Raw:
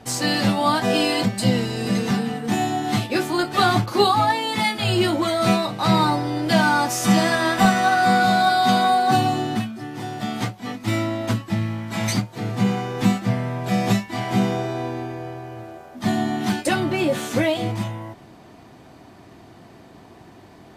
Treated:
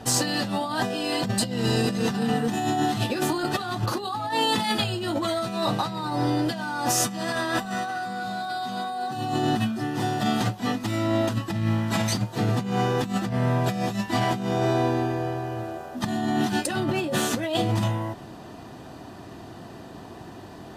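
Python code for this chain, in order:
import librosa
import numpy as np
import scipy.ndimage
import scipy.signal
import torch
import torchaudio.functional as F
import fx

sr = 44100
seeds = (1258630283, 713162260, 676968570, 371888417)

y = fx.notch(x, sr, hz=2200.0, q=6.3)
y = fx.over_compress(y, sr, threshold_db=-26.0, ratio=-1.0)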